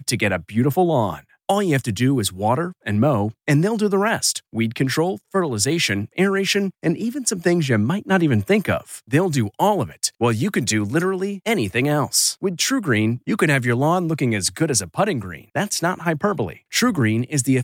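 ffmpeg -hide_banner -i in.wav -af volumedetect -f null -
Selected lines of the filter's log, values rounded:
mean_volume: -20.2 dB
max_volume: -4.5 dB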